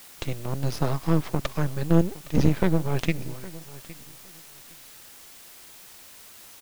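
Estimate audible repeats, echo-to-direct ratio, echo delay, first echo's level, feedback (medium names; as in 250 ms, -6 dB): 2, -19.0 dB, 813 ms, -19.0 dB, 19%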